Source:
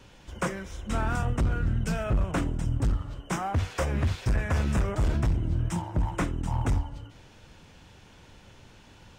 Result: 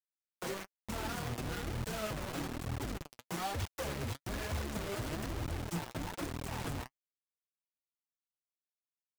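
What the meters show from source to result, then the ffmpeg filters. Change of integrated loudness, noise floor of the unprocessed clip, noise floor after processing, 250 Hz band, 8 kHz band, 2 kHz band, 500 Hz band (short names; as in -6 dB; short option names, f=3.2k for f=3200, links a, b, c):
-10.5 dB, -53 dBFS, under -85 dBFS, -9.5 dB, -3.0 dB, -7.0 dB, -6.5 dB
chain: -filter_complex "[0:a]acrossover=split=260|610|3700[a][b][c][d];[b]acontrast=86[e];[a][e][c][d]amix=inputs=4:normalize=0,highpass=57,alimiter=limit=-22dB:level=0:latency=1:release=38,acrusher=bits=4:mix=0:aa=0.000001,flanger=delay=0.7:depth=8:regen=38:speed=1.1:shape=triangular,volume=-5.5dB"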